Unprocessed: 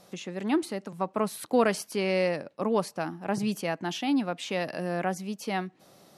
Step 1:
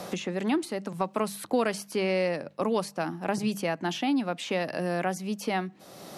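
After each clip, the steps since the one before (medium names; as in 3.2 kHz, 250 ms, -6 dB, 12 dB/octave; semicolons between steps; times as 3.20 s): hum notches 50/100/150/200 Hz; three bands compressed up and down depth 70%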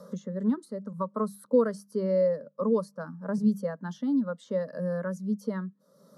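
static phaser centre 500 Hz, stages 8; spectral contrast expander 1.5:1; trim +4 dB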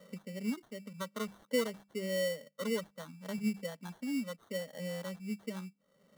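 sample-rate reducer 2.5 kHz, jitter 0%; trim -9 dB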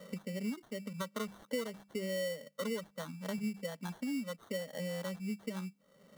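compression 3:1, threshold -42 dBFS, peak gain reduction 12 dB; trim +5.5 dB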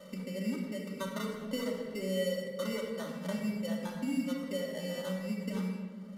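simulated room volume 2400 m³, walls mixed, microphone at 2.6 m; resampled via 32 kHz; trim -1.5 dB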